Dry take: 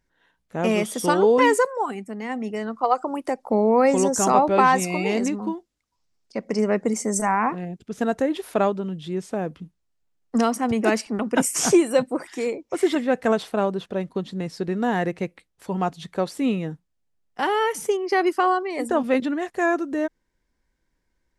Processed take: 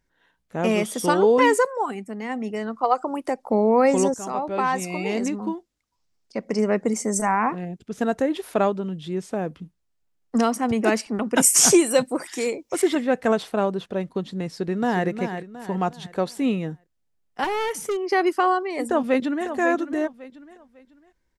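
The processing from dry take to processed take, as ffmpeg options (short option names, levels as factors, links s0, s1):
-filter_complex "[0:a]asettb=1/sr,asplit=3[s0][s1][s2];[s0]atrim=end=11.364[s3];[s1]atrim=start=11.36:end=12.82,asetpts=PTS-STARTPTS,afade=t=in:d=0.004:c=qsin,afade=t=out:st=1.456:d=0.004:c=qsin,highshelf=f=3500:g=10.5[s4];[s2]atrim=start=12.816[s5];[s3][s4]acrossfade=d=0.004:c1=hsin:c2=qsin[s6];[s6][s5]acrossfade=d=0.004:c1=qsin:c2=hsin,asplit=2[s7][s8];[s8]afade=t=in:st=14.46:d=0.01,afade=t=out:st=15.06:d=0.01,aecho=0:1:360|720|1080|1440|1800:0.398107|0.159243|0.0636971|0.0254789|0.0101915[s9];[s7][s9]amix=inputs=2:normalize=0,asettb=1/sr,asplit=3[s10][s11][s12];[s10]atrim=end=17.444[s13];[s11]atrim=start=17.44:end=18.11,asetpts=PTS-STARTPTS,afade=t=in:d=0.004:c=qsin,afade=t=out:st=0.666:d=0.004:c=qsin,volume=11.9,asoftclip=hard,volume=0.0841[s14];[s12]atrim=start=18.106[s15];[s13][s14]acrossfade=d=0.004:c1=hsin:c2=qsin[s16];[s16][s15]acrossfade=d=0.004:c1=qsin:c2=hsin,asplit=2[s17][s18];[s18]afade=t=in:st=18.85:d=0.01,afade=t=out:st=19.47:d=0.01,aecho=0:1:550|1100|1650:0.316228|0.0948683|0.0284605[s19];[s17][s19]amix=inputs=2:normalize=0,asplit=2[s20][s21];[s20]atrim=end=4.14,asetpts=PTS-STARTPTS,afade=t=out:st=4.136:d=0.004:c=hsin:silence=0.188365[s22];[s21]atrim=start=4.14,asetpts=PTS-STARTPTS,afade=t=in:d=1.39:silence=0.188365[s23];[s22][s23]concat=n=2:v=0:a=1"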